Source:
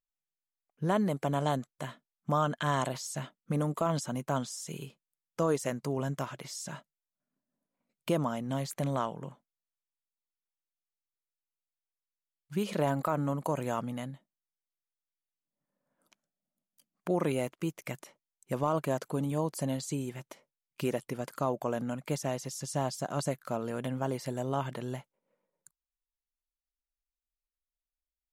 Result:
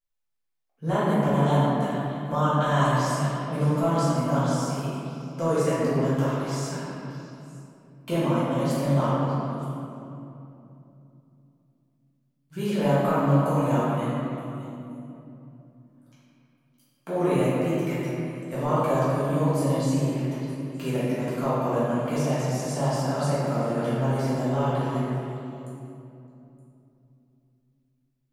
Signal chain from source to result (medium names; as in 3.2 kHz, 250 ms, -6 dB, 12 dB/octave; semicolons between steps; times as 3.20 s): repeats whose band climbs or falls 307 ms, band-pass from 1.4 kHz, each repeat 1.4 oct, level -10 dB; reverberation RT60 2.9 s, pre-delay 4 ms, DRR -12 dB; trim -5.5 dB